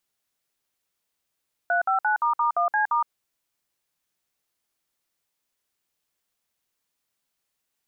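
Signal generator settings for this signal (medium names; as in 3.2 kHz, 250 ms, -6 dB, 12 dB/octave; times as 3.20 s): DTMF "359**1C*", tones 116 ms, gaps 57 ms, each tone -22 dBFS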